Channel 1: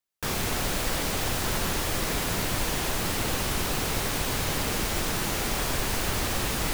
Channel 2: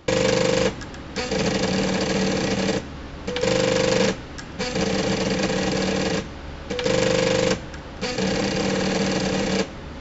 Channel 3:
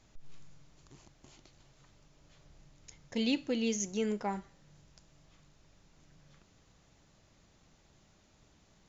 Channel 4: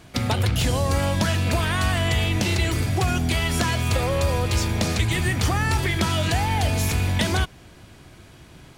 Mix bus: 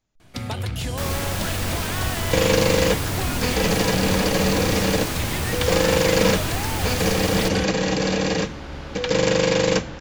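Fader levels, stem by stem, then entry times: 0.0, +1.0, −13.0, −6.0 decibels; 0.75, 2.25, 0.00, 0.20 seconds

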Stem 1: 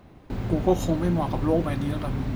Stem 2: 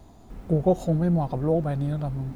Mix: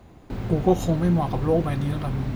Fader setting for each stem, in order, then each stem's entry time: 0.0, −5.5 decibels; 0.00, 0.00 seconds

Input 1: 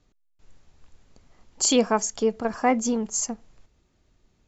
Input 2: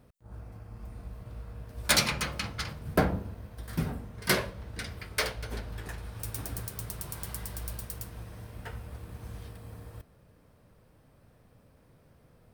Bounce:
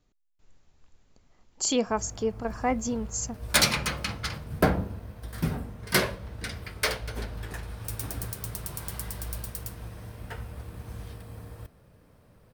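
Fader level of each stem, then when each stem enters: −5.5, +2.5 decibels; 0.00, 1.65 seconds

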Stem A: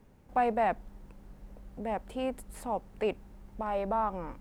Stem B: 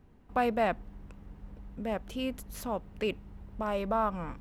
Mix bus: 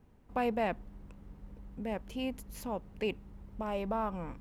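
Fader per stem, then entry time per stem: −9.5, −4.5 decibels; 0.00, 0.00 seconds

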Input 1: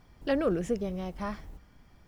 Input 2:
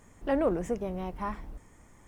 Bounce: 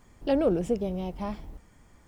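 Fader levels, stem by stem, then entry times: −1.0, −4.5 decibels; 0.00, 0.00 seconds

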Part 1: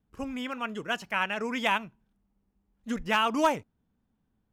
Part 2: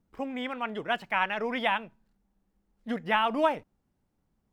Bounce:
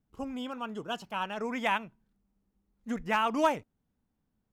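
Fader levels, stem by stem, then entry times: −5.5, −9.5 decibels; 0.00, 0.00 seconds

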